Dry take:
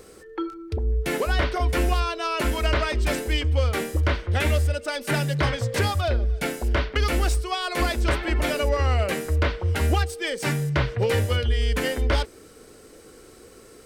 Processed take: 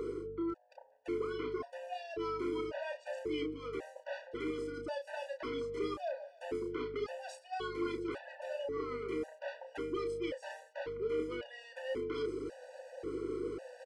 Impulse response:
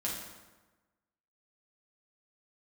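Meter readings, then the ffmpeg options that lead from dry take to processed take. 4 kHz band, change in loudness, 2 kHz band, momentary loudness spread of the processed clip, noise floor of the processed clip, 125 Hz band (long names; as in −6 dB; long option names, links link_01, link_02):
−20.0 dB, −15.5 dB, −18.5 dB, 8 LU, −61 dBFS, −30.5 dB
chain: -filter_complex "[0:a]highpass=frequency=270:width=0.5412,highpass=frequency=270:width=1.3066,acrossover=split=3500[link_01][link_02];[link_01]acompressor=mode=upward:threshold=-36dB:ratio=2.5[link_03];[link_03][link_02]amix=inputs=2:normalize=0,lowpass=9400,equalizer=frequency=350:width=1.3:gain=12,bandreject=frequency=3700:width=9.2,areverse,acompressor=threshold=-37dB:ratio=6,areverse,aemphasis=mode=reproduction:type=50fm,aeval=exprs='val(0)+0.00251*(sin(2*PI*50*n/s)+sin(2*PI*2*50*n/s)/2+sin(2*PI*3*50*n/s)/3+sin(2*PI*4*50*n/s)/4+sin(2*PI*5*50*n/s)/5)':channel_layout=same,asoftclip=type=tanh:threshold=-30dB,asplit=2[link_04][link_05];[link_05]adelay=32,volume=-6dB[link_06];[link_04][link_06]amix=inputs=2:normalize=0,afftfilt=real='re*gt(sin(2*PI*0.92*pts/sr)*(1-2*mod(floor(b*sr/1024/490),2)),0)':imag='im*gt(sin(2*PI*0.92*pts/sr)*(1-2*mod(floor(b*sr/1024/490),2)),0)':win_size=1024:overlap=0.75,volume=2dB"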